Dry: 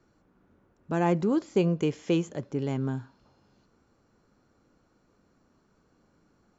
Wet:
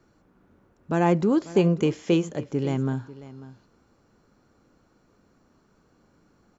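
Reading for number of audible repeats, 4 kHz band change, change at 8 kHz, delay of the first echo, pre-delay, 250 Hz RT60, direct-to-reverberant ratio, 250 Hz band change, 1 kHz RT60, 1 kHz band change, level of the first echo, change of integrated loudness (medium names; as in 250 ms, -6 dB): 1, +4.0 dB, no reading, 544 ms, no reverb, no reverb, no reverb, +4.0 dB, no reverb, +4.0 dB, -17.0 dB, +4.0 dB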